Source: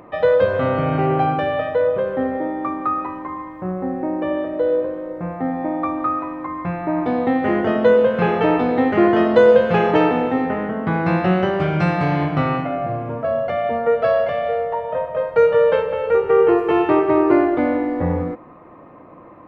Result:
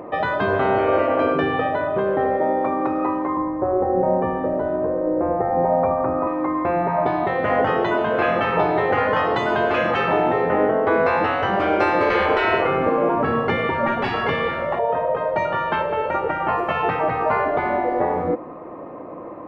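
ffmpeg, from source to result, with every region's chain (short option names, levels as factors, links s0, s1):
-filter_complex "[0:a]asettb=1/sr,asplit=3[s0][s1][s2];[s0]atrim=end=3.374[s3];[s1]atrim=start=3.37:end=6.27,asetpts=PTS-STARTPTS,afade=t=in:d=0.004:c=qsin,afade=t=out:st=2.896:d=0.004:c=qsin,lowpass=1600,lowshelf=f=260:g=8[s4];[s2]atrim=start=6.266[s5];[s3][s4]acrossfade=d=0.004:c1=hsin:c2=qsin[s6];[s6][s5]acrossfade=d=0.004:c1=qsin:c2=hsin,asettb=1/sr,asplit=3[s7][s8][s9];[s7]atrim=end=12.104[s10];[s8]atrim=start=12.1:end=14.79,asetpts=PTS-STARTPTS,afade=t=in:d=0.004:c=qsin,afade=t=out:st=2.686:d=0.004:c=qsin,acontrast=81,asplit=2[s11][s12];[s12]adelay=19,volume=0.211[s13];[s11][s13]amix=inputs=2:normalize=0,atrim=end_sample=118629[s14];[s9]atrim=start=14.786[s15];[s10][s14]acrossfade=d=0.004:c1=hsin:c2=qsin[s16];[s16][s15]acrossfade=d=0.004:c1=qsin:c2=hsin,afftfilt=real='re*lt(hypot(re,im),0.398)':imag='im*lt(hypot(re,im),0.398)':win_size=1024:overlap=0.75,equalizer=f=490:t=o:w=2.3:g=10.5"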